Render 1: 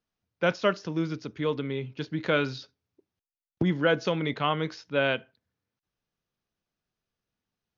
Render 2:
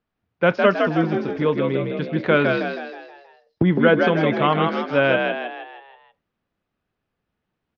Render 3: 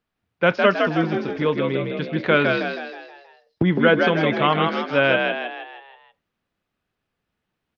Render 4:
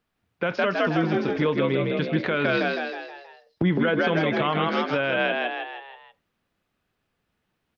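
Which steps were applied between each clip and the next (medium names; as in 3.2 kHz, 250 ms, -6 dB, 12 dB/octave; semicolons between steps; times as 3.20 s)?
low-pass 2.5 kHz 12 dB/octave; on a send: frequency-shifting echo 159 ms, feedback 48%, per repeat +55 Hz, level -4 dB; on the sum: trim +7.5 dB
peaking EQ 3.8 kHz +5 dB 2.8 oct; trim -1.5 dB
in parallel at -1 dB: compression, threshold -25 dBFS, peak gain reduction 14 dB; on the sum: peak limiter -10.5 dBFS, peak gain reduction 10.5 dB; trim -2.5 dB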